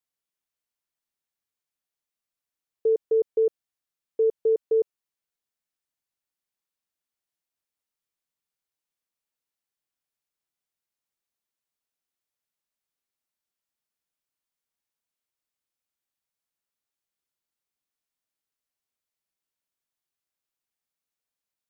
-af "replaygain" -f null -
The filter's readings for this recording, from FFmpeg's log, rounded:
track_gain = +64.0 dB
track_peak = 0.105